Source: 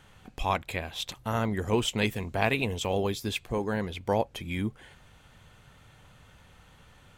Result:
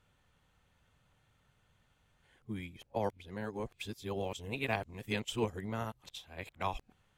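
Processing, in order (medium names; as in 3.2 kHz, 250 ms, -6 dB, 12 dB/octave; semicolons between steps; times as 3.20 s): reverse the whole clip; upward expansion 1.5:1, over -40 dBFS; trim -6.5 dB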